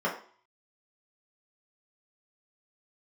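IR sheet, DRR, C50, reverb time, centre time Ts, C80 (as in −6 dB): −6.0 dB, 8.5 dB, 0.50 s, 23 ms, 12.0 dB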